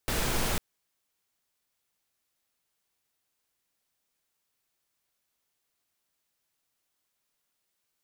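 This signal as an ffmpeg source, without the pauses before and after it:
-f lavfi -i "anoisesrc=c=pink:a=0.193:d=0.5:r=44100:seed=1"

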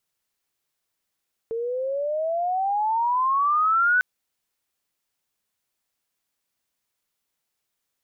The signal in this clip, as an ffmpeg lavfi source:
-f lavfi -i "aevalsrc='pow(10,(-16+9*(t/2.5-1))/20)*sin(2*PI*449*2.5/(21*log(2)/12)*(exp(21*log(2)/12*t/2.5)-1))':d=2.5:s=44100"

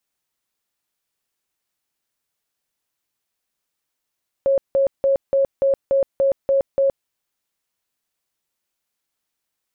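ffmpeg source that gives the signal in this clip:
-f lavfi -i "aevalsrc='0.211*sin(2*PI*547*mod(t,0.29))*lt(mod(t,0.29),65/547)':d=2.61:s=44100"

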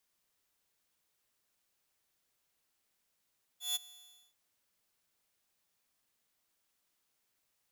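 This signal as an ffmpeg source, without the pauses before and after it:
-f lavfi -i "aevalsrc='0.0422*(2*mod(3450*t,1)-1)':d=0.742:s=44100,afade=t=in:d=0.155,afade=t=out:st=0.155:d=0.02:silence=0.0794,afade=t=out:st=0.25:d=0.492"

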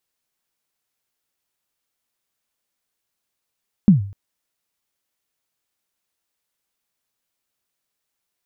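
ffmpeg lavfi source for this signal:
-f lavfi -i "aevalsrc='0.631*pow(10,-3*t/0.46)*sin(2*PI*(220*0.13/log(99/220)*(exp(log(99/220)*min(t,0.13)/0.13)-1)+99*max(t-0.13,0)))':d=0.25:s=44100"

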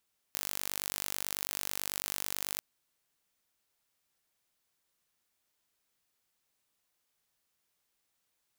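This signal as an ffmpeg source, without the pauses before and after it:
-f lavfi -i "aevalsrc='0.398*eq(mod(n,898),0)':d=2.26:s=44100"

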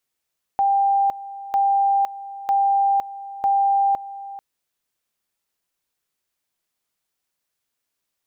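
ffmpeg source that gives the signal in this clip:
-f lavfi -i "aevalsrc='pow(10,(-15-16.5*gte(mod(t,0.95),0.51))/20)*sin(2*PI*793*t)':d=3.8:s=44100"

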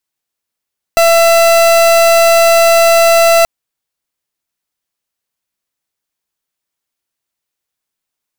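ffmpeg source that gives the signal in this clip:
-f lavfi -i "aevalsrc='0.422*(2*lt(mod(670*t,1),0.39)-1)':d=2.48:s=44100"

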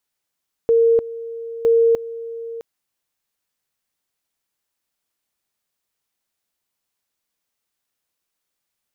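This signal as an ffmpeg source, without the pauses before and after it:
-f lavfi -i "aevalsrc='pow(10,(-11-16.5*gte(mod(t,0.96),0.3))/20)*sin(2*PI*460*t)':d=1.92:s=44100"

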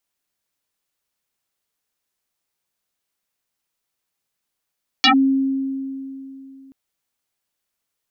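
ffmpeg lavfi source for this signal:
-f lavfi -i "aevalsrc='0.355*pow(10,-3*t/3.02)*sin(2*PI*269*t+9.8*clip(1-t/0.1,0,1)*sin(2*PI*1.94*269*t))':d=1.68:s=44100"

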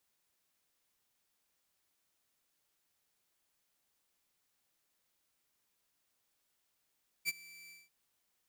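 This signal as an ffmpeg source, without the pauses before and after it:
-f lavfi -i "aevalsrc='0.0447*(2*mod(2330*t,1)-1)':d=0.643:s=44100,afade=t=in:d=0.038,afade=t=out:st=0.038:d=0.028:silence=0.075,afade=t=out:st=0.45:d=0.193"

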